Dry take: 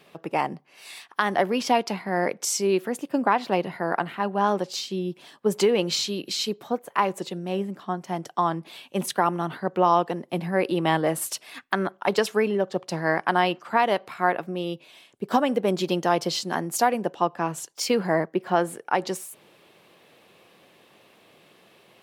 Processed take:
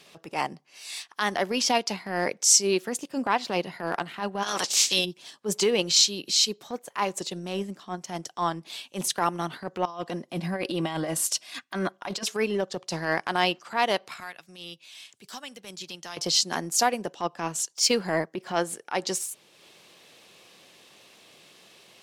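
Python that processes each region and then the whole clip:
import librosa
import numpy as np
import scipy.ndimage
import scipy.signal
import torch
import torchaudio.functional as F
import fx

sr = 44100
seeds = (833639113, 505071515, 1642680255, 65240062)

y = fx.spec_clip(x, sr, under_db=22, at=(4.42, 5.04), fade=0.02)
y = fx.highpass(y, sr, hz=240.0, slope=6, at=(4.42, 5.04), fade=0.02)
y = fx.over_compress(y, sr, threshold_db=-28.0, ratio=-1.0, at=(4.42, 5.04), fade=0.02)
y = fx.chain(y, sr, fx.high_shelf(hz=5000.0, db=-3.5),
    fx.over_compress(threshold_db=-24.0, ratio=-0.5),
    fx.notch_comb(f0_hz=440.0), at=(9.85, 12.25))
y = fx.chain(y, sr, fx.tone_stack(knobs='5-5-5'),
    fx.band_squash(depth_pct=70), at=(14.2, 16.17))
y = fx.peak_eq(y, sr, hz=6200.0, db=14.0, octaves=1.9)
y = fx.transient(y, sr, attack_db=-9, sustain_db=-5)
y = y * 10.0 ** (-2.0 / 20.0)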